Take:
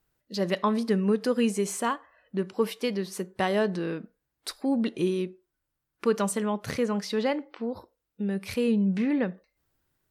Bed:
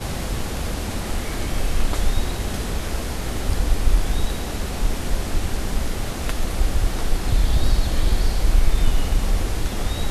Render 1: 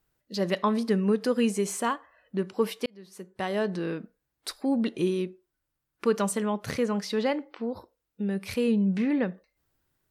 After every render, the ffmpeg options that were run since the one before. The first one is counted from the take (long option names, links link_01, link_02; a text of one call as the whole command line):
ffmpeg -i in.wav -filter_complex "[0:a]asplit=2[link_01][link_02];[link_01]atrim=end=2.86,asetpts=PTS-STARTPTS,afade=type=out:start_time=2.856:duration=0.004:curve=hsin[link_03];[link_02]atrim=start=2.86,asetpts=PTS-STARTPTS,afade=type=in:duration=1.01[link_04];[link_03][link_04]concat=n=2:v=0:a=1" out.wav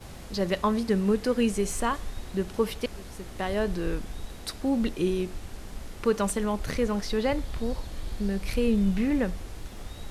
ffmpeg -i in.wav -i bed.wav -filter_complex "[1:a]volume=-16dB[link_01];[0:a][link_01]amix=inputs=2:normalize=0" out.wav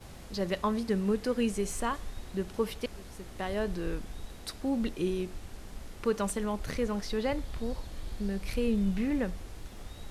ffmpeg -i in.wav -af "volume=-4.5dB" out.wav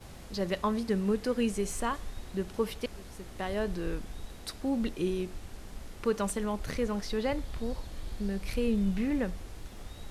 ffmpeg -i in.wav -af anull out.wav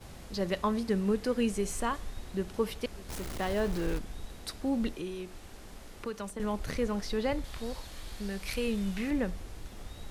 ffmpeg -i in.wav -filter_complex "[0:a]asettb=1/sr,asplit=3[link_01][link_02][link_03];[link_01]atrim=end=3.094[link_04];[link_02]atrim=start=3.09:end=3.99,asetpts=PTS-STARTPTS,afade=type=in:duration=0.004:curve=qsin,afade=type=out:start_time=0.896:duration=0.004:curve=qsin,aeval=exprs='val(0)+0.5*0.0158*sgn(val(0))':channel_layout=same[link_05];[link_03]atrim=start=3.986[link_06];[link_04][link_05]acrossfade=duration=0.004:curve1=hsin:curve2=qsin[link_07];[link_07][link_06]acrossfade=duration=0.004:curve1=qsin:curve2=hsin,asettb=1/sr,asplit=3[link_08][link_09][link_10];[link_08]atrim=end=4.924[link_11];[link_09]atrim=start=4.92:end=6.4,asetpts=PTS-STARTPTS,afade=type=in:duration=0.004:curve=qsin,afade=type=out:start_time=1.476:duration=0.004:curve=qsin,acrossover=split=240|600|1600[link_12][link_13][link_14][link_15];[link_12]acompressor=threshold=-46dB:ratio=3[link_16];[link_13]acompressor=threshold=-43dB:ratio=3[link_17];[link_14]acompressor=threshold=-46dB:ratio=3[link_18];[link_15]acompressor=threshold=-49dB:ratio=3[link_19];[link_16][link_17][link_18][link_19]amix=inputs=4:normalize=0[link_20];[link_10]atrim=start=6.396[link_21];[link_11][link_20]acrossfade=duration=0.004:curve1=hsin:curve2=qsin[link_22];[link_22][link_21]acrossfade=duration=0.004:curve1=qsin:curve2=hsin,asettb=1/sr,asplit=3[link_23][link_24][link_25];[link_23]atrim=end=7.444[link_26];[link_24]atrim=start=7.44:end=9.11,asetpts=PTS-STARTPTS,afade=type=in:duration=0.004:curve=qsin,afade=type=out:start_time=1.666:duration=0.004:curve=qsin,tiltshelf=frequency=700:gain=-5[link_27];[link_25]atrim=start=9.106[link_28];[link_26][link_27]acrossfade=duration=0.004:curve1=hsin:curve2=qsin[link_29];[link_29][link_28]acrossfade=duration=0.004:curve1=qsin:curve2=hsin" out.wav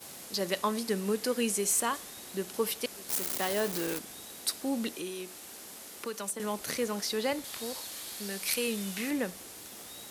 ffmpeg -i in.wav -af "highpass=230,aemphasis=mode=production:type=75kf" out.wav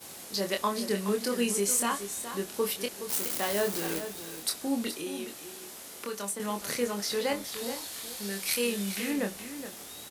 ffmpeg -i in.wav -filter_complex "[0:a]asplit=2[link_01][link_02];[link_02]adelay=25,volume=-5dB[link_03];[link_01][link_03]amix=inputs=2:normalize=0,aecho=1:1:420:0.299" out.wav